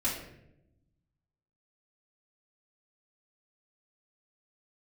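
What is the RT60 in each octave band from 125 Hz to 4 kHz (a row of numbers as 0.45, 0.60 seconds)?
1.7, 1.4, 1.0, 0.65, 0.70, 0.50 seconds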